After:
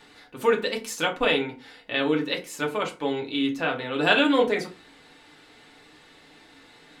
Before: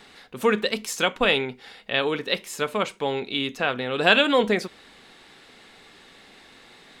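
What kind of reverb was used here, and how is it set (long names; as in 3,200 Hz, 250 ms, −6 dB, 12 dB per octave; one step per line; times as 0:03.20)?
feedback delay network reverb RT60 0.31 s, low-frequency decay 1.25×, high-frequency decay 0.6×, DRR 0 dB
level −5 dB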